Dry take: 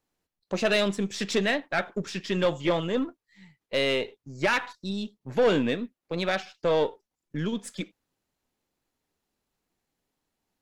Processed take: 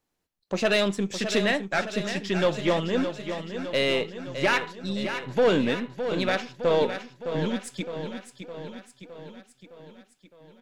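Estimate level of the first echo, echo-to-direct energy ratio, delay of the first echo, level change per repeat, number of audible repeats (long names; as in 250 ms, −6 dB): −9.0 dB, −7.0 dB, 612 ms, −4.5 dB, 6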